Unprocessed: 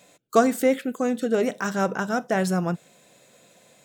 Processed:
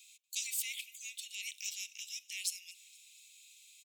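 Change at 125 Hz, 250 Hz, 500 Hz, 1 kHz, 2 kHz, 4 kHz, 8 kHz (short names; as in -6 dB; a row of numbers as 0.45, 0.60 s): under -40 dB, under -40 dB, under -40 dB, under -40 dB, -14.5 dB, 0.0 dB, 0.0 dB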